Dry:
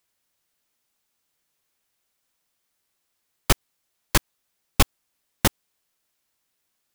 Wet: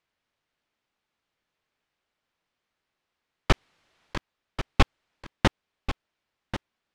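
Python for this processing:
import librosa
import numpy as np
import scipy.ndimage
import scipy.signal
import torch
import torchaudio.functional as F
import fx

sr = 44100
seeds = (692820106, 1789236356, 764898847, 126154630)

p1 = scipy.signal.sosfilt(scipy.signal.butter(2, 3200.0, 'lowpass', fs=sr, output='sos'), x)
p2 = fx.over_compress(p1, sr, threshold_db=-26.0, ratio=-0.5, at=(3.52, 4.17), fade=0.02)
y = p2 + fx.echo_single(p2, sr, ms=1089, db=-11.5, dry=0)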